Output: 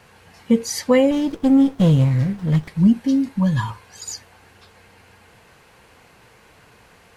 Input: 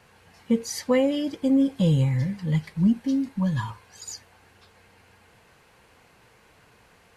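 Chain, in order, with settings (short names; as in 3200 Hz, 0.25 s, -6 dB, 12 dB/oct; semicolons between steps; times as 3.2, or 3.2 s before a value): 1.11–2.68 running maximum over 17 samples; gain +6 dB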